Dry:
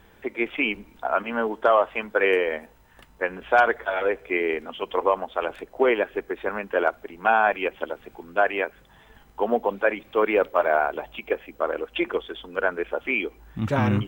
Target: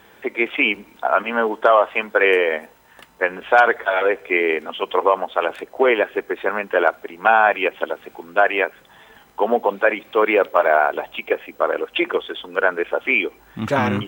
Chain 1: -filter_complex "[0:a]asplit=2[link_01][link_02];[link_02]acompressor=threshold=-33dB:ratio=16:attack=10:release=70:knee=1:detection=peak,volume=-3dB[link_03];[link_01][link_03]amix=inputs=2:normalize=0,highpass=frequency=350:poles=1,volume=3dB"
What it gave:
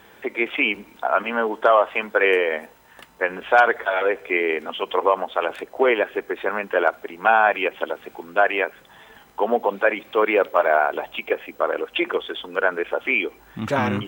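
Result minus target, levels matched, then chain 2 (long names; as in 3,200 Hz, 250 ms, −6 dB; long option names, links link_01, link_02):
downward compressor: peak gain reduction +11 dB
-filter_complex "[0:a]asplit=2[link_01][link_02];[link_02]acompressor=threshold=-21dB:ratio=16:attack=10:release=70:knee=1:detection=peak,volume=-3dB[link_03];[link_01][link_03]amix=inputs=2:normalize=0,highpass=frequency=350:poles=1,volume=3dB"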